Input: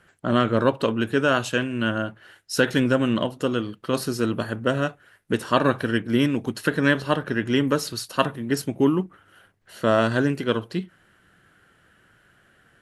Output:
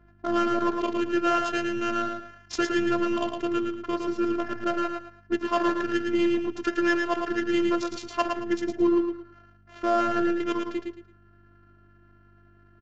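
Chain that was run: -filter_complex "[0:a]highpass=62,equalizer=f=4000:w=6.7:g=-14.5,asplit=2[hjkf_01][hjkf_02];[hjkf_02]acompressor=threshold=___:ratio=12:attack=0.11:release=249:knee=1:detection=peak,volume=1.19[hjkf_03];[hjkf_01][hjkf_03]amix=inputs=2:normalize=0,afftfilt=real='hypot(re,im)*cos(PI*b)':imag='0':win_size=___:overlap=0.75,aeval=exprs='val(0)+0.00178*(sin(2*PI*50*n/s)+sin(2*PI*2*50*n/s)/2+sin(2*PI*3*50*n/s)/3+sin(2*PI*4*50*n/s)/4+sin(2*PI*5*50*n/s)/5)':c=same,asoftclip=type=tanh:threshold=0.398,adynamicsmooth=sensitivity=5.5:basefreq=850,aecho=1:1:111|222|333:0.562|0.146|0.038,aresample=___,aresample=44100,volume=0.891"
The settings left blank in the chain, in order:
0.0355, 512, 16000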